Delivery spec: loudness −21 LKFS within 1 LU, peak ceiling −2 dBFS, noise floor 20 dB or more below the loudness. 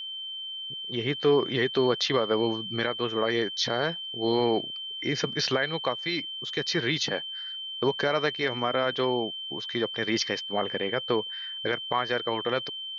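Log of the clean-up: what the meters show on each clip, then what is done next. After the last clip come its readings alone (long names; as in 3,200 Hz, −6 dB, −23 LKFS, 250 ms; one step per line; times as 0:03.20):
interfering tone 3,100 Hz; level of the tone −34 dBFS; integrated loudness −27.5 LKFS; sample peak −11.5 dBFS; target loudness −21.0 LKFS
→ notch filter 3,100 Hz, Q 30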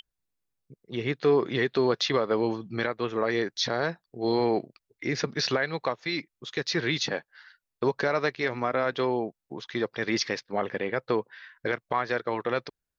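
interfering tone none found; integrated loudness −28.5 LKFS; sample peak −12.0 dBFS; target loudness −21.0 LKFS
→ level +7.5 dB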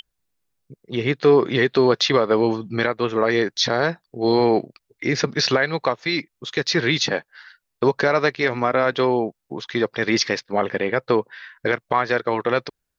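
integrated loudness −21.0 LKFS; sample peak −4.5 dBFS; background noise floor −78 dBFS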